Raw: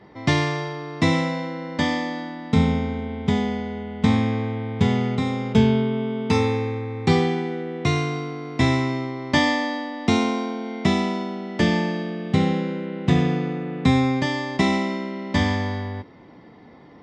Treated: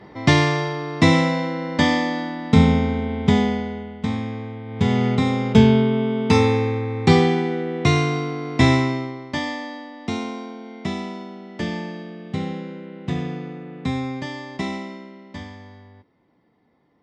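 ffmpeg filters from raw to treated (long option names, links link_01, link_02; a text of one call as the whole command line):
ffmpeg -i in.wav -af "volume=14.5dB,afade=type=out:start_time=3.41:duration=0.63:silence=0.298538,afade=type=in:start_time=4.65:duration=0.43:silence=0.316228,afade=type=out:start_time=8.72:duration=0.59:silence=0.281838,afade=type=out:start_time=14.64:duration=0.87:silence=0.316228" out.wav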